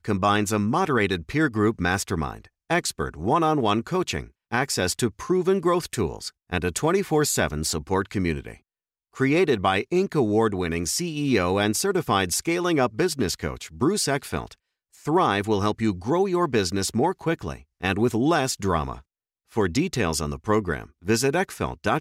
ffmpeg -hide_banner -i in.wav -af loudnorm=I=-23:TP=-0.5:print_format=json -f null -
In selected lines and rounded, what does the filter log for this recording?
"input_i" : "-24.2",
"input_tp" : "-9.3",
"input_lra" : "2.3",
"input_thresh" : "-34.4",